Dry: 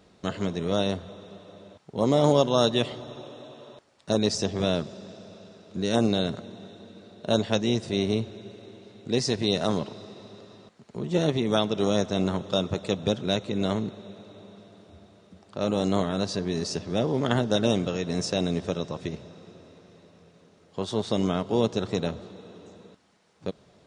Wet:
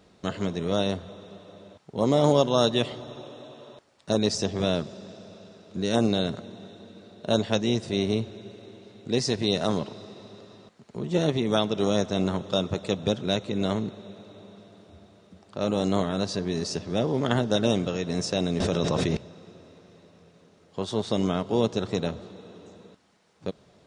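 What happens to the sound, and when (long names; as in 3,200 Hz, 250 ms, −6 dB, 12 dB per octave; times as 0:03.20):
0:18.60–0:19.17: envelope flattener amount 100%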